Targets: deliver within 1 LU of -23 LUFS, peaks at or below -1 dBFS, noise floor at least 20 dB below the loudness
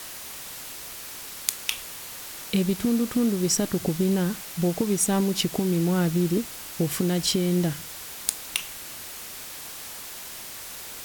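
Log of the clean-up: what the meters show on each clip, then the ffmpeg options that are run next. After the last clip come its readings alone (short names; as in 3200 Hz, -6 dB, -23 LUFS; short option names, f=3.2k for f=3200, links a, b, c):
noise floor -39 dBFS; noise floor target -47 dBFS; loudness -27.0 LUFS; peak -5.5 dBFS; loudness target -23.0 LUFS
-> -af "afftdn=nr=8:nf=-39"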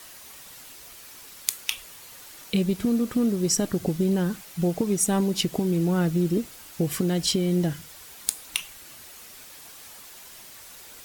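noise floor -46 dBFS; loudness -25.5 LUFS; peak -5.5 dBFS; loudness target -23.0 LUFS
-> -af "volume=2.5dB"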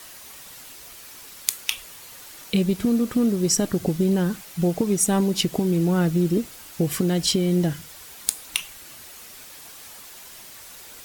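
loudness -23.0 LUFS; peak -3.0 dBFS; noise floor -43 dBFS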